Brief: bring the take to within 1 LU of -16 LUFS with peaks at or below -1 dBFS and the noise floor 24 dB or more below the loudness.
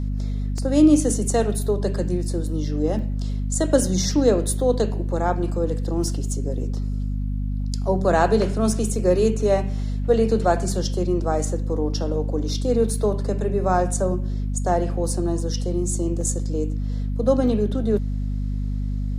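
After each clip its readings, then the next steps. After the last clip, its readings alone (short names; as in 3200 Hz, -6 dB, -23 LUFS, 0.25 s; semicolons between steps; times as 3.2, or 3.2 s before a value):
dropouts 4; longest dropout 2.2 ms; hum 50 Hz; harmonics up to 250 Hz; hum level -22 dBFS; loudness -22.5 LUFS; peak -4.5 dBFS; loudness target -16.0 LUFS
-> interpolate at 0.58/2.99/16.21/17.97, 2.2 ms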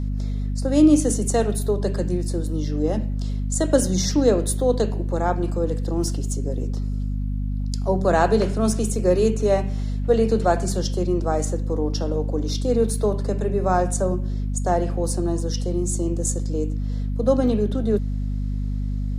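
dropouts 0; hum 50 Hz; harmonics up to 250 Hz; hum level -22 dBFS
-> notches 50/100/150/200/250 Hz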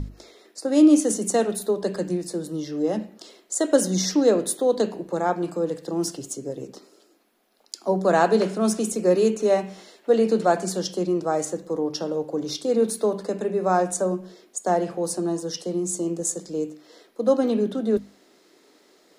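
hum none; loudness -23.5 LUFS; peak -5.5 dBFS; loudness target -16.0 LUFS
-> gain +7.5 dB; limiter -1 dBFS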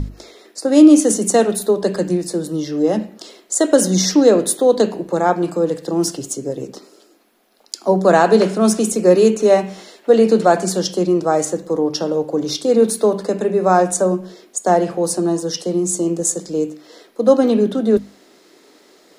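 loudness -16.5 LUFS; peak -1.0 dBFS; noise floor -52 dBFS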